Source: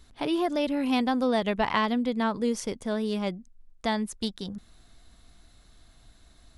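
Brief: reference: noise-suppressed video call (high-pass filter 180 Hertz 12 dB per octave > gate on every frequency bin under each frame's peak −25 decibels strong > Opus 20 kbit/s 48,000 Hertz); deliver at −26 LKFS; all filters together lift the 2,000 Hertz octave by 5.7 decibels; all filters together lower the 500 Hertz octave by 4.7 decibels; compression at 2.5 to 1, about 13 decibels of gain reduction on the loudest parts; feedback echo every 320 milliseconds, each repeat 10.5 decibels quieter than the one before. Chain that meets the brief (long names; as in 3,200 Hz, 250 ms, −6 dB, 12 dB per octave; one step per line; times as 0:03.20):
parametric band 500 Hz −6.5 dB
parametric band 2,000 Hz +7 dB
downward compressor 2.5 to 1, threshold −39 dBFS
high-pass filter 180 Hz 12 dB per octave
repeating echo 320 ms, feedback 30%, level −10.5 dB
gate on every frequency bin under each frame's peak −25 dB strong
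level +13 dB
Opus 20 kbit/s 48,000 Hz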